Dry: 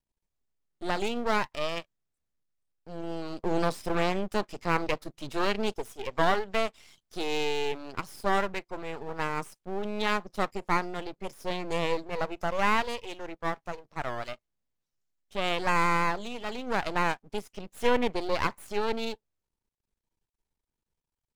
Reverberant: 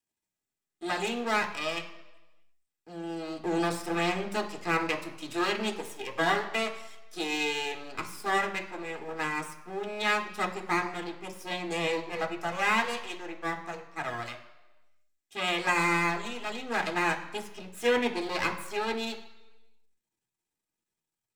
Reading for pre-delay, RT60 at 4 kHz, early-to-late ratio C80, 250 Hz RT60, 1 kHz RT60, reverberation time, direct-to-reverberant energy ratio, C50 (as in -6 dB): 3 ms, 1.0 s, 13.5 dB, 0.95 s, 1.1 s, 1.1 s, 3.0 dB, 10.5 dB